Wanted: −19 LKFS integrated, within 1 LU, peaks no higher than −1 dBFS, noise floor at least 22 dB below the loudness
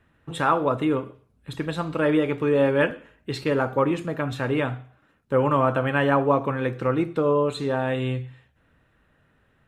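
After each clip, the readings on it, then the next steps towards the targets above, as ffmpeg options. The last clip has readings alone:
integrated loudness −24.0 LKFS; sample peak −7.0 dBFS; target loudness −19.0 LKFS
→ -af "volume=5dB"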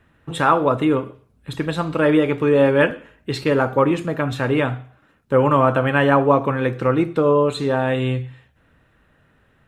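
integrated loudness −19.0 LKFS; sample peak −2.0 dBFS; background noise floor −59 dBFS

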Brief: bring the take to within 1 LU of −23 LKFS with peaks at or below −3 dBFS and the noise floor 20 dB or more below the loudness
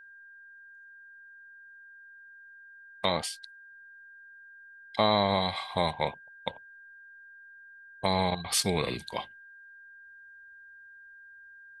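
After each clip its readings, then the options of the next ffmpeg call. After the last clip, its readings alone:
interfering tone 1,600 Hz; level of the tone −49 dBFS; integrated loudness −29.5 LKFS; sample peak −11.5 dBFS; target loudness −23.0 LKFS
→ -af "bandreject=frequency=1600:width=30"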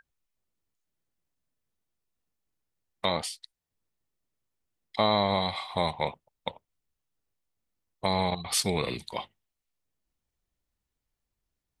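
interfering tone none found; integrated loudness −29.0 LKFS; sample peak −11.5 dBFS; target loudness −23.0 LKFS
→ -af "volume=6dB"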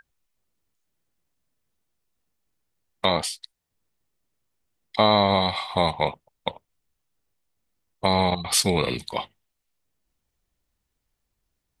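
integrated loudness −23.0 LKFS; sample peak −5.5 dBFS; background noise floor −80 dBFS

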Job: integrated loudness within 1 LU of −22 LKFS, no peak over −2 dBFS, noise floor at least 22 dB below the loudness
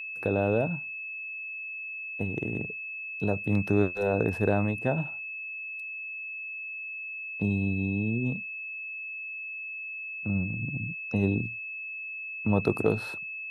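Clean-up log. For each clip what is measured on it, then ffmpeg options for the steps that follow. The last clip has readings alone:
interfering tone 2,600 Hz; level of the tone −35 dBFS; integrated loudness −30.5 LKFS; sample peak −9.5 dBFS; target loudness −22.0 LKFS
→ -af "bandreject=frequency=2600:width=30"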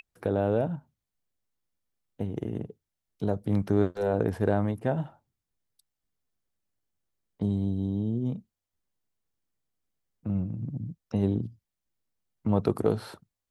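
interfering tone none found; integrated loudness −29.5 LKFS; sample peak −10.0 dBFS; target loudness −22.0 LKFS
→ -af "volume=7.5dB"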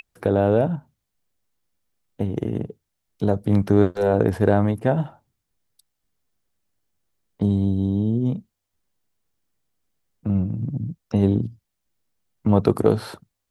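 integrated loudness −22.0 LKFS; sample peak −2.5 dBFS; background noise floor −79 dBFS

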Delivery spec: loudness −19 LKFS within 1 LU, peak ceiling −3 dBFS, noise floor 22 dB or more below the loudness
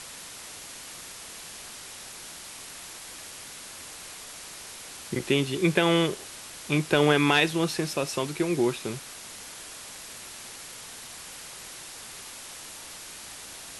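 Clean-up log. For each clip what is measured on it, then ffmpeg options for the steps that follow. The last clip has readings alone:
background noise floor −43 dBFS; target noise floor −52 dBFS; integrated loudness −30.0 LKFS; sample peak −7.0 dBFS; target loudness −19.0 LKFS
→ -af "afftdn=noise_reduction=9:noise_floor=-43"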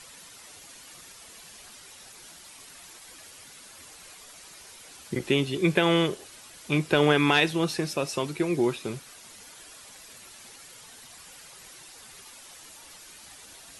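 background noise floor −49 dBFS; integrated loudness −25.0 LKFS; sample peak −7.0 dBFS; target loudness −19.0 LKFS
→ -af "volume=6dB,alimiter=limit=-3dB:level=0:latency=1"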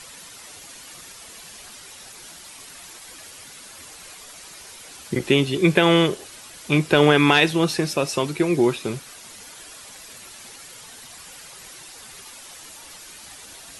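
integrated loudness −19.5 LKFS; sample peak −3.0 dBFS; background noise floor −43 dBFS

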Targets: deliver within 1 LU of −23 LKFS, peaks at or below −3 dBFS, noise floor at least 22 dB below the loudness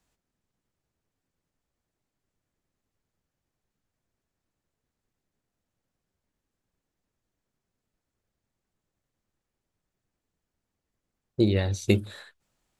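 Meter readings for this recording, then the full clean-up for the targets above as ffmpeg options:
integrated loudness −25.5 LKFS; sample peak −4.5 dBFS; target loudness −23.0 LKFS
→ -af "volume=2.5dB,alimiter=limit=-3dB:level=0:latency=1"

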